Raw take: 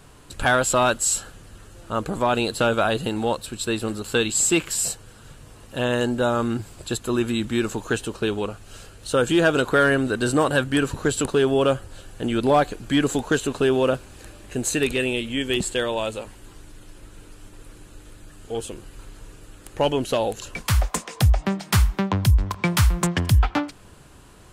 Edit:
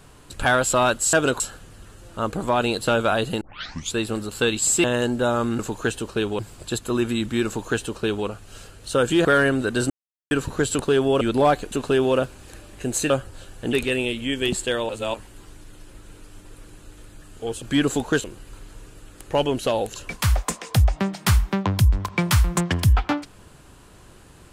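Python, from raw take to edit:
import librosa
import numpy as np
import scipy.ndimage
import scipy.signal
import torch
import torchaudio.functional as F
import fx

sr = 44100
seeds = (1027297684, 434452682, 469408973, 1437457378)

y = fx.edit(x, sr, fx.tape_start(start_s=3.14, length_s=0.53),
    fx.cut(start_s=4.57, length_s=1.26),
    fx.duplicate(start_s=7.65, length_s=0.8, to_s=6.58),
    fx.move(start_s=9.44, length_s=0.27, to_s=1.13),
    fx.silence(start_s=10.36, length_s=0.41),
    fx.move(start_s=11.67, length_s=0.63, to_s=14.81),
    fx.move(start_s=12.81, length_s=0.62, to_s=18.7),
    fx.reverse_span(start_s=15.97, length_s=0.25), tone=tone)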